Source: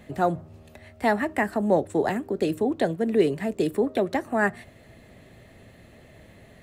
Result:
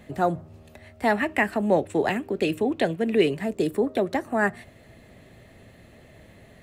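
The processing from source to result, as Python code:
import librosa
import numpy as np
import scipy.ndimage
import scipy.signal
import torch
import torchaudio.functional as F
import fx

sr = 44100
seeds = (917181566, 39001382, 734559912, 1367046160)

y = fx.peak_eq(x, sr, hz=2600.0, db=10.0, octaves=0.79, at=(1.1, 3.37))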